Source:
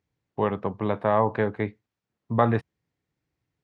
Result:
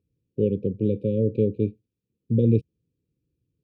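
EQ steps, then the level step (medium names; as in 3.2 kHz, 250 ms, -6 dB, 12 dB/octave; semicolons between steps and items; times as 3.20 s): brick-wall FIR band-stop 550–2300 Hz; tilt shelf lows +8 dB, about 940 Hz; -2.0 dB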